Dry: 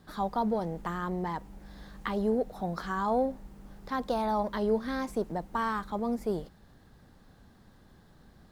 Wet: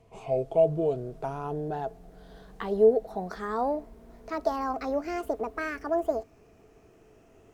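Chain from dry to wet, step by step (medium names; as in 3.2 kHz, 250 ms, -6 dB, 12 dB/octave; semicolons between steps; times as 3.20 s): gliding tape speed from 61% -> 165%; small resonant body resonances 440/660 Hz, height 16 dB, ringing for 70 ms; trim -3.5 dB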